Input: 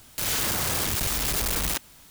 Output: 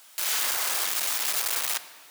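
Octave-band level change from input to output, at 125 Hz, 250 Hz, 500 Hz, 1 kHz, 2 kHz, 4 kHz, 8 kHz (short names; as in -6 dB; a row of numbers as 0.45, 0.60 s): under -30 dB, -18.0 dB, -7.0 dB, -1.5 dB, 0.0 dB, 0.0 dB, 0.0 dB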